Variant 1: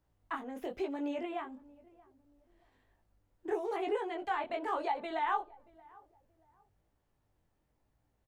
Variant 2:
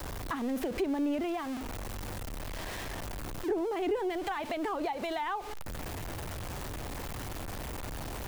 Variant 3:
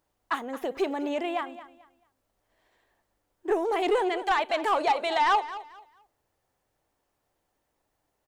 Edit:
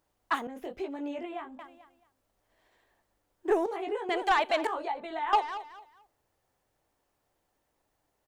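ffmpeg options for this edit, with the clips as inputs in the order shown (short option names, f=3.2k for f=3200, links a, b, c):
-filter_complex "[0:a]asplit=3[a][b][c];[2:a]asplit=4[d][e][f][g];[d]atrim=end=0.472[h];[a]atrim=start=0.468:end=1.592[i];[e]atrim=start=1.588:end=3.662[j];[b]atrim=start=3.658:end=4.092[k];[f]atrim=start=4.088:end=4.672[l];[c]atrim=start=4.668:end=5.332[m];[g]atrim=start=5.328[n];[h][i]acrossfade=d=0.004:c1=hsin:c2=hsin[o];[o][j]acrossfade=d=0.004:c1=hsin:c2=hsin[p];[p][k]acrossfade=d=0.004:c1=hsin:c2=hsin[q];[q][l]acrossfade=d=0.004:c1=hsin:c2=hsin[r];[r][m]acrossfade=d=0.004:c1=hsin:c2=hsin[s];[s][n]acrossfade=d=0.004:c1=hsin:c2=hsin"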